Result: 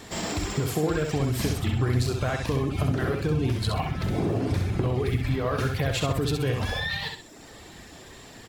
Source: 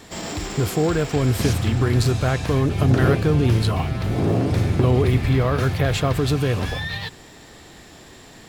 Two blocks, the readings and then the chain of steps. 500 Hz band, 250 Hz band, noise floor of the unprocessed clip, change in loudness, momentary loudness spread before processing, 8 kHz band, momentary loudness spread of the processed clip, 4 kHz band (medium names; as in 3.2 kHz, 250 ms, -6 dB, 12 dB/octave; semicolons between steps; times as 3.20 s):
-6.0 dB, -6.5 dB, -45 dBFS, -6.5 dB, 8 LU, -3.5 dB, 19 LU, -3.0 dB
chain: reverb removal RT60 0.95 s; compression, threshold -23 dBFS, peak gain reduction 10 dB; on a send: feedback delay 65 ms, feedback 34%, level -5 dB